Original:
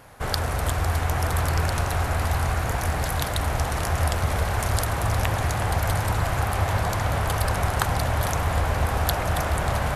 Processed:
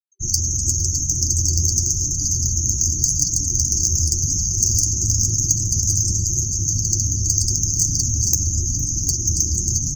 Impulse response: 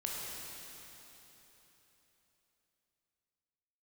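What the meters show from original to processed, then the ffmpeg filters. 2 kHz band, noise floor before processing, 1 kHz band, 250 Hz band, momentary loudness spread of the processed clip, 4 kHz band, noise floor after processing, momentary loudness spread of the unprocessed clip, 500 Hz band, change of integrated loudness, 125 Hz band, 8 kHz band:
below −40 dB, −27 dBFS, below −40 dB, +1.0 dB, 2 LU, +5.5 dB, −24 dBFS, 2 LU, −16.0 dB, +7.0 dB, +1.5 dB, +20.5 dB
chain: -filter_complex "[0:a]lowpass=frequency=6400:width_type=q:width=15,highshelf=frequency=2200:gain=7.5,afftfilt=real='re*gte(hypot(re,im),0.0631)':imag='im*gte(hypot(re,im),0.0631)':win_size=1024:overlap=0.75,acontrast=77,afftfilt=real='re*(1-between(b*sr/4096,380,4500))':imag='im*(1-between(b*sr/4096,380,4500))':win_size=4096:overlap=0.75,flanger=delay=6.6:depth=3.8:regen=-39:speed=0.89:shape=sinusoidal,asplit=2[link_01][link_02];[link_02]aecho=0:1:460:0.141[link_03];[link_01][link_03]amix=inputs=2:normalize=0,volume=-1dB"

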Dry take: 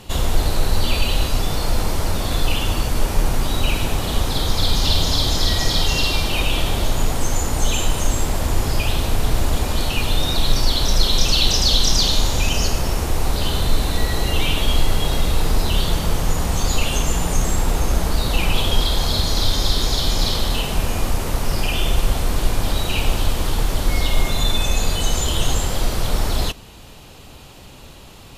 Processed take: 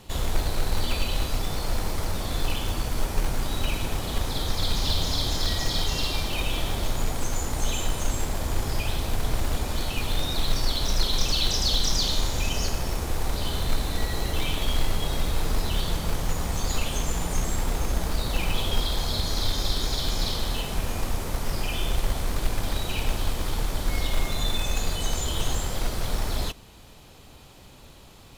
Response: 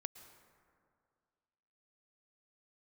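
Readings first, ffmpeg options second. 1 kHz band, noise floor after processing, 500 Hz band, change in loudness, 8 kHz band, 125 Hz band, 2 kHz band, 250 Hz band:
−7.0 dB, −48 dBFS, −7.0 dB, −7.5 dB, −7.0 dB, −7.5 dB, −7.0 dB, −7.5 dB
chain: -filter_complex "[0:a]bandreject=frequency=2800:width=18,acrossover=split=2000[link_01][link_02];[link_01]acrusher=bits=4:mode=log:mix=0:aa=0.000001[link_03];[link_03][link_02]amix=inputs=2:normalize=0,volume=-7.5dB"

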